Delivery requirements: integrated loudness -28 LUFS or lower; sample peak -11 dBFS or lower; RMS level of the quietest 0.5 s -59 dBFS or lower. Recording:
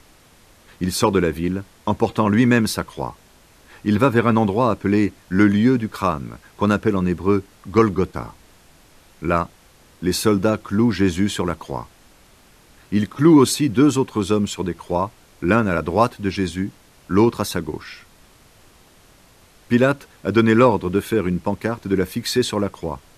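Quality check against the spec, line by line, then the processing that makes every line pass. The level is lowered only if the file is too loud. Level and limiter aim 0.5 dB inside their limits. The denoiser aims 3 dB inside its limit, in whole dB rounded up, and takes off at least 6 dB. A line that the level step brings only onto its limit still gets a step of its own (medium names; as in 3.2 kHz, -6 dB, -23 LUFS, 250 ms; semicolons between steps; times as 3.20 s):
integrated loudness -20.0 LUFS: fail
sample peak -2.5 dBFS: fail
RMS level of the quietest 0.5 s -51 dBFS: fail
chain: trim -8.5 dB; peak limiter -11.5 dBFS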